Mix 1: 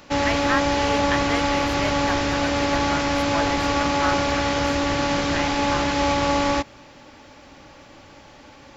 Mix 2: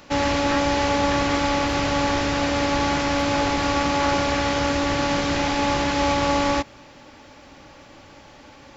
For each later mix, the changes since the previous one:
speech −9.0 dB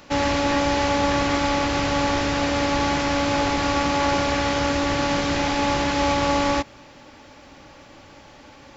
speech: add phaser with its sweep stopped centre 2,000 Hz, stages 8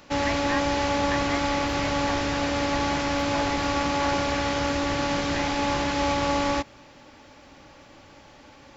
speech +4.5 dB
background −3.5 dB

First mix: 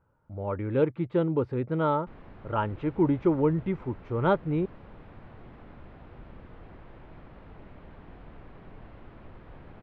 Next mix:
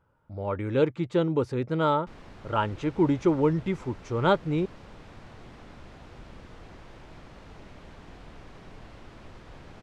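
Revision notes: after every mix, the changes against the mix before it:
master: remove high-frequency loss of the air 460 metres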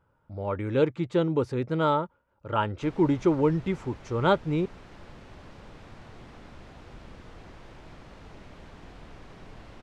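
background: entry +0.75 s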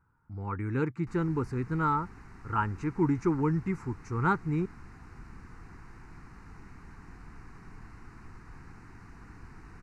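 background: entry −1.75 s
master: add phaser with its sweep stopped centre 1,400 Hz, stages 4

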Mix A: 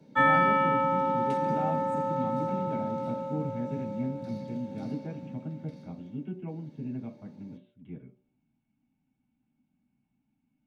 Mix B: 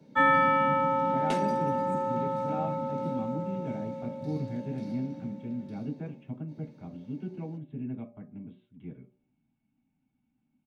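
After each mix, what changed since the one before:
speech: entry +0.95 s
second sound +11.0 dB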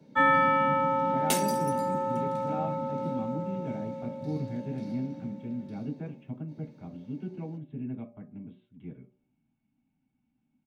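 second sound: remove head-to-tape spacing loss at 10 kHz 24 dB

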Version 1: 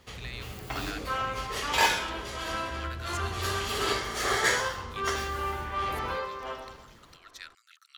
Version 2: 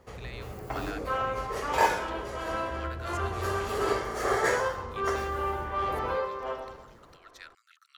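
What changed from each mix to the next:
first sound: add parametric band 3,300 Hz −7.5 dB 1 octave
master: add drawn EQ curve 250 Hz 0 dB, 500 Hz +6 dB, 3,600 Hz −6 dB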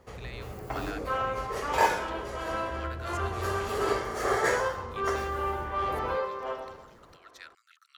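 second sound: add high-pass filter 110 Hz 6 dB per octave

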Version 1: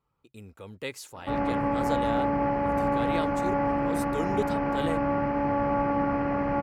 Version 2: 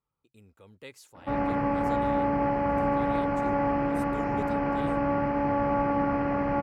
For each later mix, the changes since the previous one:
speech −10.0 dB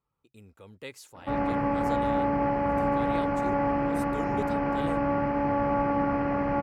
speech +4.0 dB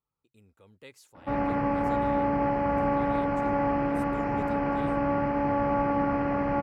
speech −7.5 dB

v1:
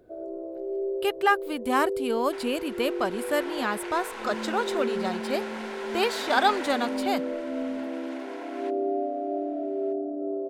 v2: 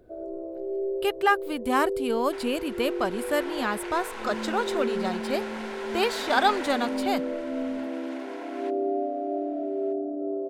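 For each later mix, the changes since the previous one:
master: add low-shelf EQ 70 Hz +11.5 dB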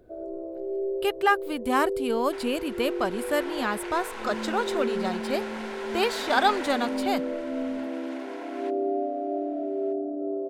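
nothing changed

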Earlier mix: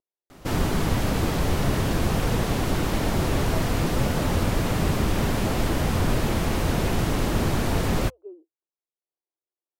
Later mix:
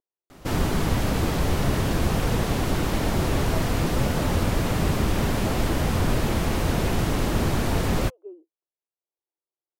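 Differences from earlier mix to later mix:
speech: remove high-frequency loss of the air 200 metres
master: add parametric band 66 Hz +3.5 dB 0.21 octaves

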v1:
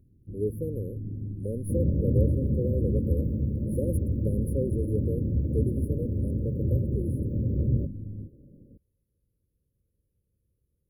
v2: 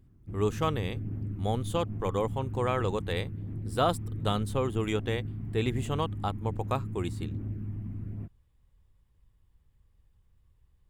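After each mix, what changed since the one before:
speech: remove meter weighting curve D
second sound: muted
master: remove linear-phase brick-wall band-stop 590–9,500 Hz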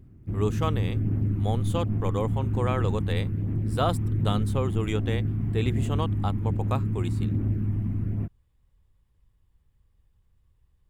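background +9.5 dB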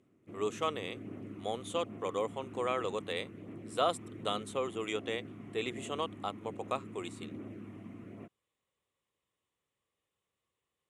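master: add loudspeaker in its box 500–9,600 Hz, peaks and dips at 870 Hz −8 dB, 1,600 Hz −8 dB, 4,800 Hz −9 dB

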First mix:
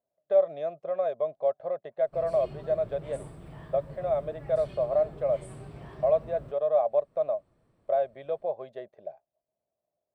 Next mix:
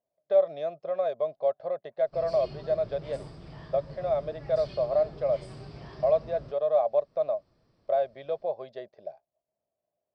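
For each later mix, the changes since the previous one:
master: add low-pass with resonance 5,000 Hz, resonance Q 7.5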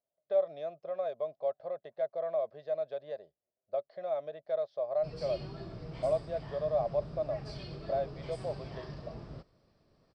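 speech −6.5 dB
background: entry +2.90 s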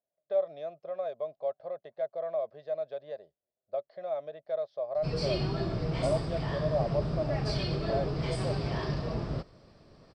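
background +12.0 dB

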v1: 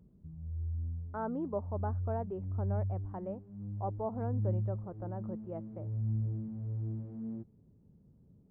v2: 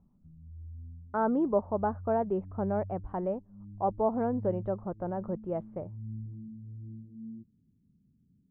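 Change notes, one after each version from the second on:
speech +9.0 dB
background: add transistor ladder low-pass 300 Hz, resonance 45%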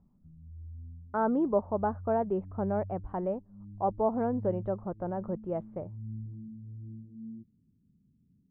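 nothing changed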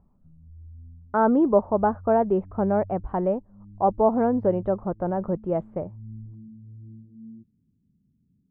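speech +8.0 dB

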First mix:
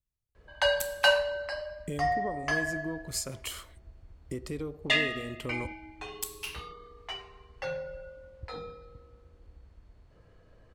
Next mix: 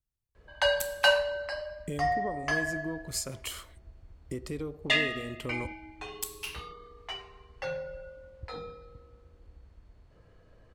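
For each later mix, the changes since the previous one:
nothing changed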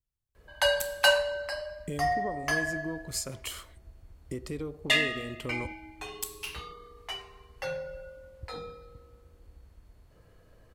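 background: remove high-frequency loss of the air 82 metres

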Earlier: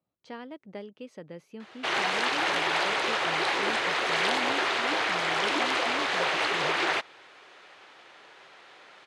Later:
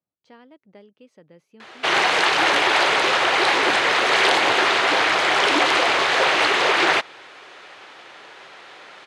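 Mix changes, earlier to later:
speech −7.0 dB
background +9.0 dB

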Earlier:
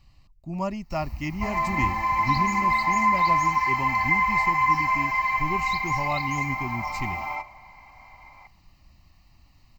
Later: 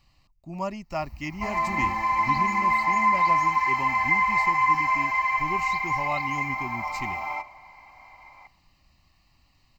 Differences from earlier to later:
speech: add low-shelf EQ 200 Hz −9 dB
first sound −7.5 dB

